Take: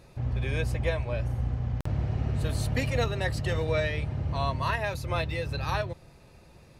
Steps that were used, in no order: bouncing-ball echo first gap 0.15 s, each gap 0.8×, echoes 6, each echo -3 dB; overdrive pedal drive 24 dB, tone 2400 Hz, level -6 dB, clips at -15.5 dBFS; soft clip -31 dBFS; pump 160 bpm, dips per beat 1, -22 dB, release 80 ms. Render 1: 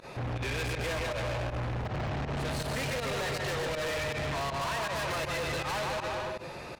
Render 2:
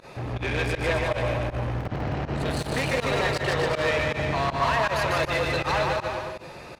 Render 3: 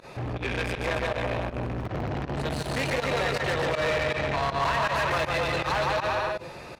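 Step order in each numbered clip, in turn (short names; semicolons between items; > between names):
overdrive pedal > bouncing-ball echo > pump > soft clip; soft clip > overdrive pedal > bouncing-ball echo > pump; bouncing-ball echo > soft clip > pump > overdrive pedal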